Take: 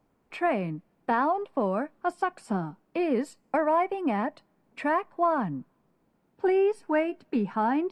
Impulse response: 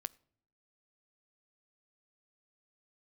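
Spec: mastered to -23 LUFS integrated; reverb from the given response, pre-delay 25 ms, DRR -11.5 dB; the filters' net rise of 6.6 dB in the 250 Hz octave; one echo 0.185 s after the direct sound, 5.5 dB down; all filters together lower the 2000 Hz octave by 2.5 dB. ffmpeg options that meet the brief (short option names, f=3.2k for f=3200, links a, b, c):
-filter_complex "[0:a]equalizer=f=250:t=o:g=8.5,equalizer=f=2k:t=o:g=-3.5,aecho=1:1:185:0.531,asplit=2[a][b];[1:a]atrim=start_sample=2205,adelay=25[c];[b][c]afir=irnorm=-1:irlink=0,volume=14dB[d];[a][d]amix=inputs=2:normalize=0,volume=-10.5dB"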